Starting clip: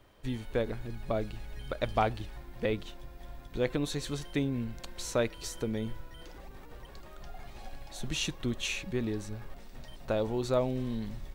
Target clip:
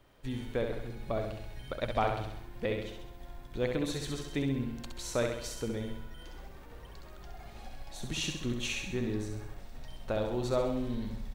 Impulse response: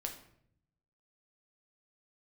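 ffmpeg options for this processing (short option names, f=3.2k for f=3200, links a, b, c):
-af "aecho=1:1:66|132|198|264|330|396|462:0.562|0.304|0.164|0.0885|0.0478|0.0258|0.0139,volume=-2.5dB"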